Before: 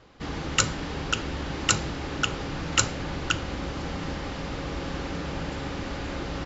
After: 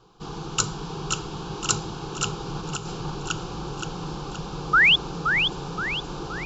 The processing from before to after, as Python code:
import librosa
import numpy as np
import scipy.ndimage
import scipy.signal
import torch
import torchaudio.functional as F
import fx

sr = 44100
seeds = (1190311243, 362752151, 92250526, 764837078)

y = fx.over_compress(x, sr, threshold_db=-32.0, ratio=-0.5, at=(2.46, 3.14), fade=0.02)
y = fx.fixed_phaser(y, sr, hz=390.0, stages=8)
y = fx.spec_paint(y, sr, seeds[0], shape='rise', start_s=4.73, length_s=0.23, low_hz=1200.0, high_hz=3600.0, level_db=-17.0)
y = fx.echo_feedback(y, sr, ms=522, feedback_pct=46, wet_db=-6)
y = y * librosa.db_to_amplitude(1.5)